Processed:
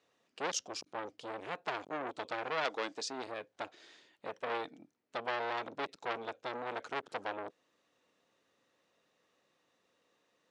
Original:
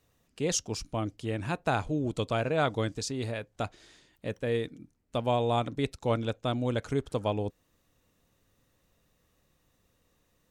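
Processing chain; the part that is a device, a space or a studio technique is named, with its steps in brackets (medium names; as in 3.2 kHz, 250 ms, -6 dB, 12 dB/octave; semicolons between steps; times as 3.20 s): 2.64–3.26 s: high-pass 370 Hz -> 140 Hz 12 dB/octave; public-address speaker with an overloaded transformer (transformer saturation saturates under 2.9 kHz; band-pass 350–5100 Hz)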